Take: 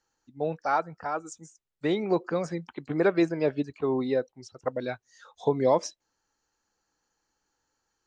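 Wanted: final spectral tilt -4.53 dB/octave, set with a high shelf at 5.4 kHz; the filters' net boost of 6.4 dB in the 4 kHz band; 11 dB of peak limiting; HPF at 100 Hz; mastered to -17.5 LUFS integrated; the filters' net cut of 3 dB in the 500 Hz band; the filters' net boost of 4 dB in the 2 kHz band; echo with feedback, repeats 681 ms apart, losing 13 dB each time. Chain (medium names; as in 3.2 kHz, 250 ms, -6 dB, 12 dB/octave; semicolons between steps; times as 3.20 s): high-pass 100 Hz; peaking EQ 500 Hz -4 dB; peaking EQ 2 kHz +4 dB; peaking EQ 4 kHz +3.5 dB; treble shelf 5.4 kHz +7.5 dB; peak limiter -21.5 dBFS; feedback delay 681 ms, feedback 22%, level -13 dB; trim +16.5 dB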